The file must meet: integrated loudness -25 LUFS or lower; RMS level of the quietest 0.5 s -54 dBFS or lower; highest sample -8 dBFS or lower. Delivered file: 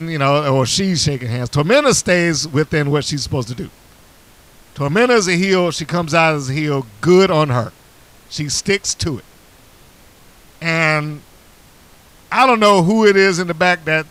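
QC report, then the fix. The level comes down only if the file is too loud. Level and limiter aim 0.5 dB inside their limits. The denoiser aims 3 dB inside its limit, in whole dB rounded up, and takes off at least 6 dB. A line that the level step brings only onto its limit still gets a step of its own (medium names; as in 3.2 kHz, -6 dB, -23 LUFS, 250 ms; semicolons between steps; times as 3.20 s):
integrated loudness -15.5 LUFS: fail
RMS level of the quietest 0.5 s -46 dBFS: fail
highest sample -2.0 dBFS: fail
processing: trim -10 dB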